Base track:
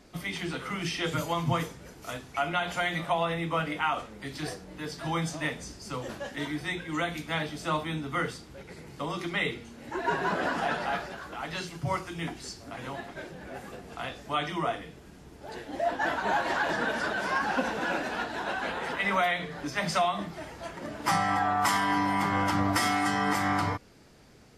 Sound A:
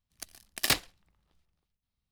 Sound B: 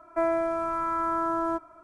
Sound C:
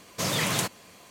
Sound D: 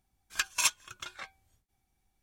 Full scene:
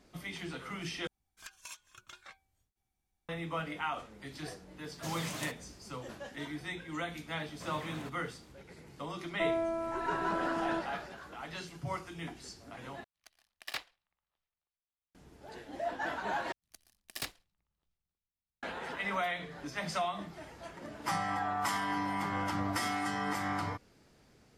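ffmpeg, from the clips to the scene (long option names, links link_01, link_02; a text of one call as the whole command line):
ffmpeg -i bed.wav -i cue0.wav -i cue1.wav -i cue2.wav -i cue3.wav -filter_complex "[3:a]asplit=2[link_01][link_02];[1:a]asplit=2[link_03][link_04];[0:a]volume=-7.5dB[link_05];[4:a]acompressor=threshold=-36dB:ratio=6:attack=3.2:release=140:knee=1:detection=peak[link_06];[link_02]acrossover=split=2600[link_07][link_08];[link_08]acompressor=threshold=-42dB:ratio=4:attack=1:release=60[link_09];[link_07][link_09]amix=inputs=2:normalize=0[link_10];[2:a]equalizer=frequency=1400:width_type=o:width=1.1:gain=-7.5[link_11];[link_03]acrossover=split=530 4300:gain=0.178 1 0.251[link_12][link_13][link_14];[link_12][link_13][link_14]amix=inputs=3:normalize=0[link_15];[link_05]asplit=4[link_16][link_17][link_18][link_19];[link_16]atrim=end=1.074[link_20];[link_06]atrim=end=2.22,asetpts=PTS-STARTPTS,volume=-8dB[link_21];[link_17]atrim=start=3.286:end=13.044[link_22];[link_15]atrim=end=2.11,asetpts=PTS-STARTPTS,volume=-10dB[link_23];[link_18]atrim=start=15.146:end=16.524[link_24];[link_04]atrim=end=2.11,asetpts=PTS-STARTPTS,volume=-13.5dB[link_25];[link_19]atrim=start=18.626[link_26];[link_01]atrim=end=1.1,asetpts=PTS-STARTPTS,volume=-14.5dB,afade=type=in:duration=0.004:curve=hsin,afade=type=out:start_time=1.096:duration=0.004:curve=hsin,adelay=4840[link_27];[link_10]atrim=end=1.1,asetpts=PTS-STARTPTS,volume=-16dB,afade=type=in:duration=0.004:curve=hsin,afade=type=out:start_time=1.096:duration=0.004:curve=hsin,adelay=7420[link_28];[link_11]atrim=end=1.83,asetpts=PTS-STARTPTS,volume=-4.5dB,afade=type=in:duration=0.004:curve=hsin,afade=type=out:start_time=1.826:duration=0.004:curve=hsin,adelay=9230[link_29];[link_20][link_21]acrossfade=duration=0.004:curve1=hsin:curve2=hsin[link_30];[link_30][link_22]acrossfade=duration=0.004:curve1=hsin:curve2=hsin[link_31];[link_31][link_23]acrossfade=duration=0.004:curve1=hsin:curve2=hsin[link_32];[link_32][link_24]acrossfade=duration=0.004:curve1=hsin:curve2=hsin[link_33];[link_33][link_25]acrossfade=duration=0.004:curve1=hsin:curve2=hsin[link_34];[link_34][link_26]acrossfade=duration=0.004:curve1=hsin:curve2=hsin[link_35];[link_35][link_27][link_28][link_29]amix=inputs=4:normalize=0" out.wav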